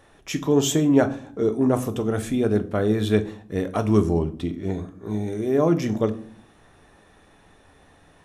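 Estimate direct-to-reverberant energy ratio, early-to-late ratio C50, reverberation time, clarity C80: 8.0 dB, 16.5 dB, 0.55 s, 21.0 dB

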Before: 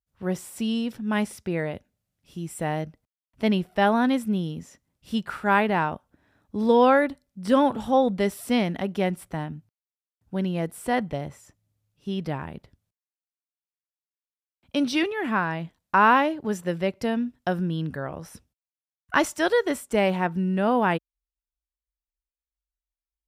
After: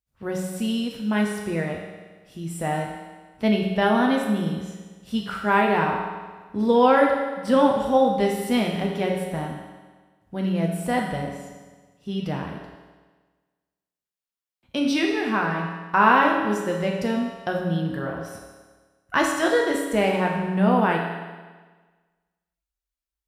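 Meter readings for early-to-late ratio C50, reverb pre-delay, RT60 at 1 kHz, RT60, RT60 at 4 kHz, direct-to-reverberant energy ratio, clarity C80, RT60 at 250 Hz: 3.0 dB, 7 ms, 1.4 s, 1.4 s, 1.4 s, -0.5 dB, 5.0 dB, 1.4 s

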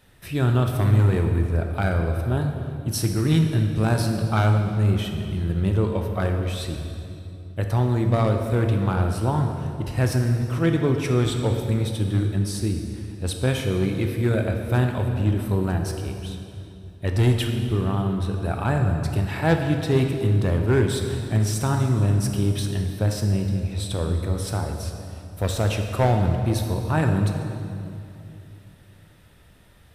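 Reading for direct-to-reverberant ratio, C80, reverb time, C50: 3.5 dB, 6.0 dB, 2.7 s, 5.0 dB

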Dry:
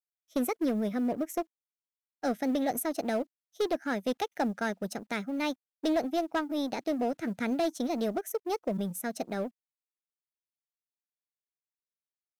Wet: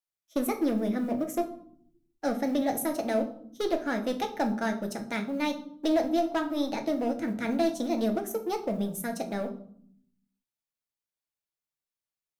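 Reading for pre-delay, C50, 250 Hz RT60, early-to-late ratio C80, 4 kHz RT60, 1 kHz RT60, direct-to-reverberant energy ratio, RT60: 3 ms, 11.5 dB, 1.4 s, 15.5 dB, 0.45 s, 0.55 s, 4.0 dB, 0.60 s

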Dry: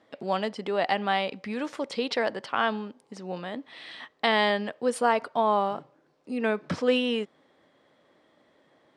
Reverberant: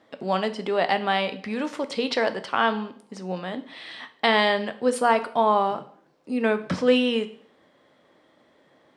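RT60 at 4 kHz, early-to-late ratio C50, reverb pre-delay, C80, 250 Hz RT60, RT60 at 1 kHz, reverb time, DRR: 0.50 s, 15.0 dB, 6 ms, 19.0 dB, 0.50 s, 0.55 s, 0.55 s, 10.0 dB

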